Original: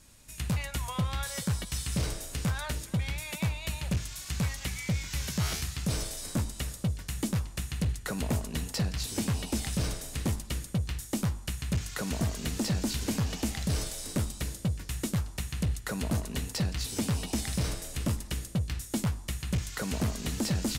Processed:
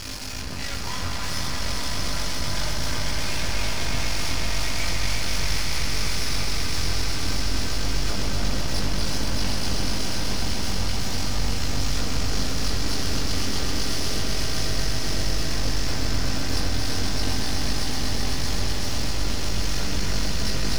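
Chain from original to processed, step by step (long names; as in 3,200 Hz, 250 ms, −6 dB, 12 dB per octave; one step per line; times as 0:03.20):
sign of each sample alone
high shelf with overshoot 7,400 Hz −13.5 dB, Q 3
notch filter 3,800 Hz, Q 20
delay that swaps between a low-pass and a high-pass 311 ms, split 2,400 Hz, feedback 84%, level −3.5 dB
chorus effect 0.34 Hz, delay 19 ms, depth 5 ms
half-wave rectification
echo that builds up and dies away 127 ms, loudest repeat 5, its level −9 dB
on a send at −3.5 dB: convolution reverb RT60 1.5 s, pre-delay 5 ms
on the sum: level +4.5 dB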